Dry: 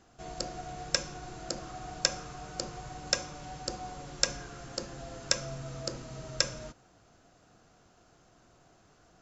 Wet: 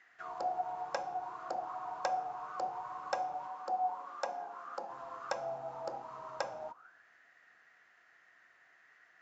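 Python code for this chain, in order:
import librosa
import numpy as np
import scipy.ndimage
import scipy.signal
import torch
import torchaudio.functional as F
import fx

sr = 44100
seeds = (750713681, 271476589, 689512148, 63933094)

y = fx.auto_wah(x, sr, base_hz=800.0, top_hz=2000.0, q=12.0, full_db=-36.0, direction='down')
y = fx.cheby_ripple_highpass(y, sr, hz=170.0, ripple_db=3, at=(3.47, 4.9))
y = y * 10.0 ** (18.0 / 20.0)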